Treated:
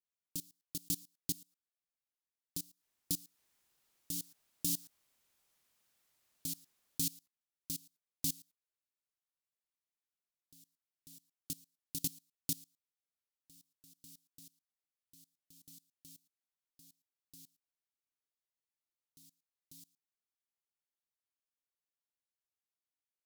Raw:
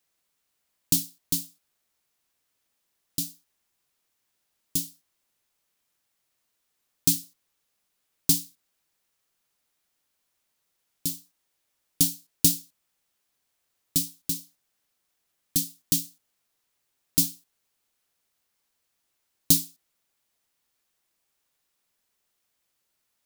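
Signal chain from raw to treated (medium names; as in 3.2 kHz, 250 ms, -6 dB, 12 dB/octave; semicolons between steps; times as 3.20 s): Doppler pass-by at 5.11 s, 8 m/s, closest 2.9 m; level held to a coarse grid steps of 23 dB; reverse echo 544 ms -5.5 dB; trim +13.5 dB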